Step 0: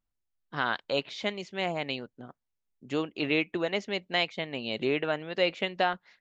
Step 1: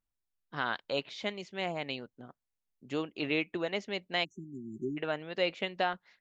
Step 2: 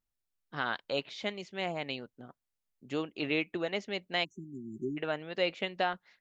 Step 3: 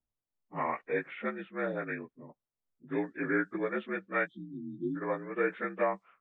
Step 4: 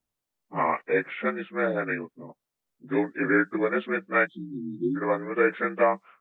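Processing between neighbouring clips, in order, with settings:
spectral delete 4.24–4.97, 400–5800 Hz; gain -4 dB
notch 1000 Hz, Q 23
inharmonic rescaling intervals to 80%; low-pass opened by the level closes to 800 Hz, open at -30 dBFS; gain +2.5 dB
low shelf 85 Hz -9 dB; gain +8 dB

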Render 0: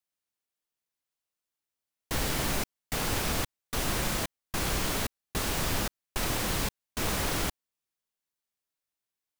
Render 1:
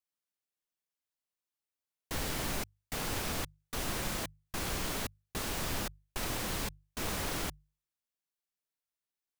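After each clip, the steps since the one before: notches 50/100/150 Hz; gain -5.5 dB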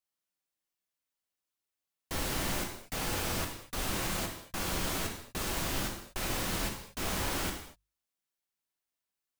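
non-linear reverb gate 0.27 s falling, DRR 1.5 dB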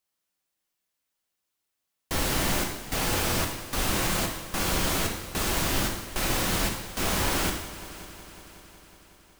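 multi-head echo 0.184 s, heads all three, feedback 61%, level -21 dB; gain +7 dB

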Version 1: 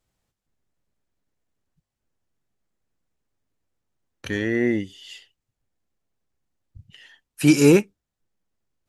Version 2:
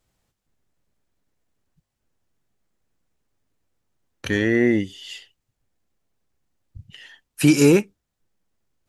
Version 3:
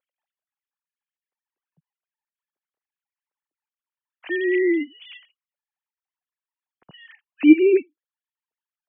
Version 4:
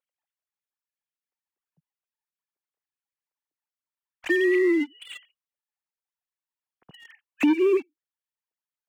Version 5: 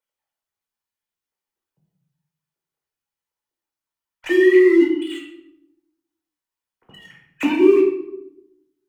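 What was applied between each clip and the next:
compressor 2.5:1, threshold -17 dBFS, peak gain reduction 5.5 dB; gain +4.5 dB
sine-wave speech
sample leveller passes 2; compressor 6:1, threshold -19 dBFS, peak gain reduction 13.5 dB
reverb RT60 0.85 s, pre-delay 8 ms, DRR -2 dB

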